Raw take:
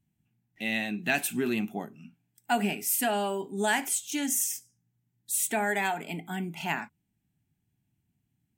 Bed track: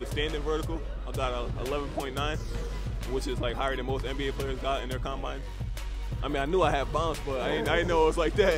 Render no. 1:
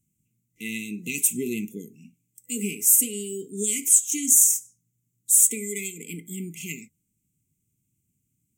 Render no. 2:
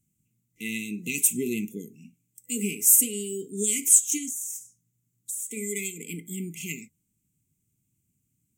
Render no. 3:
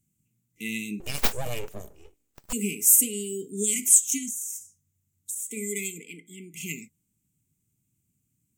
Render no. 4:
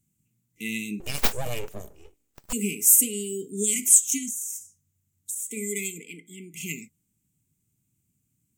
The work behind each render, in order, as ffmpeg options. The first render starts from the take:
-af "afftfilt=real='re*(1-between(b*sr/4096,500,2000))':imag='im*(1-between(b*sr/4096,500,2000))':win_size=4096:overlap=0.75,highshelf=f=5.6k:t=q:w=3:g=8.5"
-filter_complex "[0:a]asplit=3[a][b][c];[a]afade=t=out:st=4.17:d=0.02[d];[b]acompressor=threshold=-30dB:ratio=10:attack=3.2:release=140:knee=1:detection=peak,afade=t=in:st=4.17:d=0.02,afade=t=out:st=5.56:d=0.02[e];[c]afade=t=in:st=5.56:d=0.02[f];[d][e][f]amix=inputs=3:normalize=0"
-filter_complex "[0:a]asettb=1/sr,asplit=3[a][b][c];[a]atrim=end=1.004[d];[b]atrim=start=1:end=2.53,asetpts=PTS-STARTPTS,afade=t=in:d=0.004:c=qsin,afade=t=out:st=1.526:d=0.004:c=qsin,aeval=exprs='abs(val(0))':c=same[e];[c]atrim=start=2.526[f];[d][e]acrossfade=d=0.004:c1=hsin:c2=qsin[g];[g][f]acrossfade=d=0.004:c1=qsin:c2=hsin,asplit=3[h][i][j];[h]afade=t=out:st=3.74:d=0.02[k];[i]afreqshift=-27,afade=t=in:st=3.74:d=0.02,afade=t=out:st=5.34:d=0.02[l];[j]afade=t=in:st=5.34:d=0.02[m];[k][l][m]amix=inputs=3:normalize=0,asplit=3[n][o][p];[n]afade=t=out:st=5.99:d=0.02[q];[o]bandpass=f=1.4k:t=q:w=0.5,afade=t=in:st=5.99:d=0.02,afade=t=out:st=6.53:d=0.02[r];[p]afade=t=in:st=6.53:d=0.02[s];[q][r][s]amix=inputs=3:normalize=0"
-af "volume=1dB,alimiter=limit=-3dB:level=0:latency=1"

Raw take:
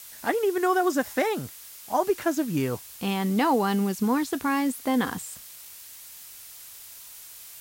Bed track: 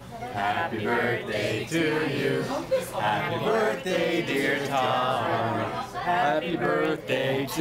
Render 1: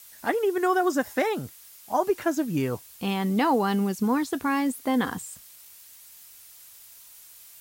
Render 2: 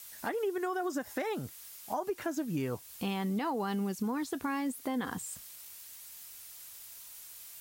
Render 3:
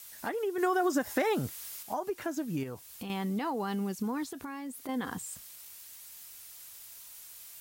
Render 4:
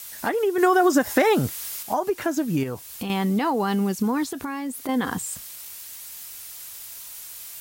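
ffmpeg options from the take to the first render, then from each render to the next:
-af "afftdn=nr=6:nf=-45"
-af "alimiter=limit=-17.5dB:level=0:latency=1:release=114,acompressor=threshold=-36dB:ratio=2"
-filter_complex "[0:a]asettb=1/sr,asplit=3[a][b][c];[a]atrim=end=0.584[d];[b]atrim=start=0.58:end=1.83,asetpts=PTS-STARTPTS,afade=t=in:d=0.004:c=qsin,afade=t=out:st=1.246:d=0.004:c=qsin,acontrast=54[e];[c]atrim=start=1.826[f];[d][e]acrossfade=d=0.004:c1=hsin:c2=qsin[g];[g][f]acrossfade=d=0.004:c1=qsin:c2=hsin,asettb=1/sr,asplit=3[h][i][j];[h]atrim=end=2.634[k];[i]atrim=start=2.63:end=3.1,asetpts=PTS-STARTPTS,afade=t=in:d=0.004:c=qsin,afade=t=out:st=0.466:d=0.004:c=qsin,acompressor=threshold=-36dB:ratio=6:attack=3.2:release=140:knee=1:detection=peak[l];[j]atrim=start=3.096[m];[k][l]acrossfade=d=0.004:c1=hsin:c2=qsin[n];[n][m]acrossfade=d=0.004:c1=qsin:c2=hsin,asettb=1/sr,asplit=3[o][p][q];[o]atrim=end=4.294[r];[p]atrim=start=4.29:end=4.89,asetpts=PTS-STARTPTS,afade=t=in:d=0.004:c=qsin,afade=t=out:st=0.596:d=0.004:c=qsin,acompressor=threshold=-38dB:ratio=3:attack=3.2:release=140:knee=1:detection=peak[s];[q]atrim=start=4.886[t];[r][s]acrossfade=d=0.004:c1=hsin:c2=qsin[u];[u][t]acrossfade=d=0.004:c1=qsin:c2=hsin"
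-af "volume=10dB"

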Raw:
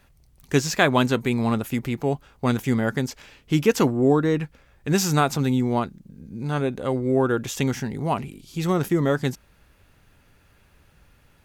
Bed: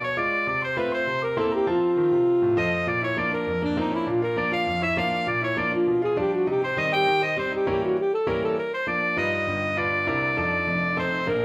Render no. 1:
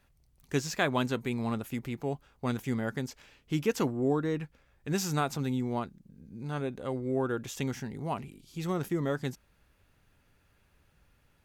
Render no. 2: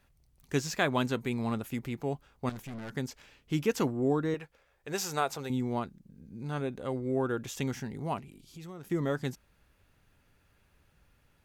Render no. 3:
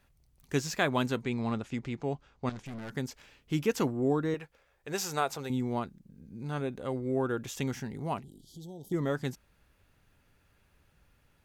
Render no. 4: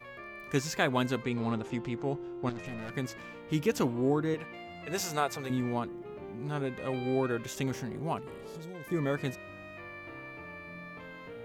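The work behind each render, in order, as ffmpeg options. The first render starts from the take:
-af "volume=-9.5dB"
-filter_complex "[0:a]asettb=1/sr,asplit=3[a][b][c];[a]atrim=end=2.494[d];[b]atrim=start=2.49:end=2.95,asetpts=PTS-STARTPTS,afade=t=in:d=0.004:c=qsin,afade=t=out:st=0.456:d=0.004:c=qsin,aeval=exprs='(tanh(79.4*val(0)+0.5)-tanh(0.5))/79.4':c=same[e];[c]atrim=start=2.946[f];[d][e]acrossfade=d=0.004:c1=hsin:c2=qsin[g];[g][f]acrossfade=d=0.004:c1=qsin:c2=hsin,asettb=1/sr,asplit=3[h][i][j];[h]atrim=end=4.344[k];[i]atrim=start=4.34:end=5.5,asetpts=PTS-STARTPTS,afade=t=in:d=0.004:c=qsin,afade=t=out:st=1.156:d=0.004:c=qsin,lowshelf=f=340:t=q:w=1.5:g=-9[l];[j]atrim=start=5.496[m];[k][l]acrossfade=d=0.004:c1=hsin:c2=qsin[n];[n][m]acrossfade=d=0.004:c1=qsin:c2=hsin,asettb=1/sr,asplit=3[o][p][q];[o]atrim=end=8.194[r];[p]atrim=start=8.19:end=8.9,asetpts=PTS-STARTPTS,afade=t=in:d=0.004:c=qsin,afade=t=out:st=0.706:d=0.004:c=qsin,acompressor=threshold=-47dB:ratio=2.5:attack=3.2:release=140:knee=1:detection=peak[s];[q]atrim=start=8.896[t];[r][s]acrossfade=d=0.004:c1=hsin:c2=qsin[u];[u][t]acrossfade=d=0.004:c1=qsin:c2=hsin"
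-filter_complex "[0:a]asettb=1/sr,asplit=3[a][b][c];[a]atrim=end=1.214[d];[b]atrim=start=1.21:end=2.66,asetpts=PTS-STARTPTS,afade=t=in:d=0.004:c=qsin,afade=t=out:st=1.446:d=0.004:c=qsin,lowpass=f=7.2k:w=0.5412,lowpass=f=7.2k:w=1.3066[e];[c]atrim=start=2.656[f];[d][e]acrossfade=d=0.004:c1=hsin:c2=qsin[g];[g][f]acrossfade=d=0.004:c1=qsin:c2=hsin,asplit=3[h][i][j];[h]afade=t=out:st=8.22:d=0.02[k];[i]asuperstop=centerf=1700:order=20:qfactor=0.76,afade=t=in:st=8.22:d=0.02,afade=t=out:st=8.92:d=0.02[l];[j]afade=t=in:st=8.92:d=0.02[m];[k][l][m]amix=inputs=3:normalize=0"
-filter_complex "[1:a]volume=-20.5dB[a];[0:a][a]amix=inputs=2:normalize=0"

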